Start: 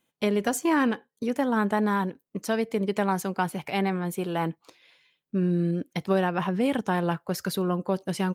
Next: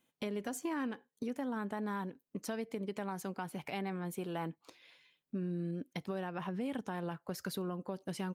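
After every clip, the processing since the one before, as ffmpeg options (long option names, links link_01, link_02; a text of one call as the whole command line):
ffmpeg -i in.wav -af "equalizer=frequency=260:width_type=o:width=0.23:gain=4,alimiter=limit=-17.5dB:level=0:latency=1:release=210,acompressor=threshold=-39dB:ratio=2,volume=-3dB" out.wav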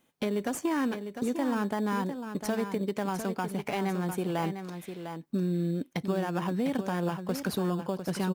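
ffmpeg -i in.wav -filter_complex "[0:a]asplit=2[link_01][link_02];[link_02]acrusher=samples=11:mix=1:aa=0.000001,volume=-8dB[link_03];[link_01][link_03]amix=inputs=2:normalize=0,aecho=1:1:702:0.376,volume=5.5dB" out.wav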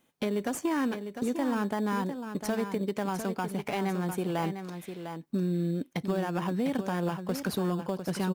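ffmpeg -i in.wav -af "asoftclip=type=hard:threshold=-21dB" out.wav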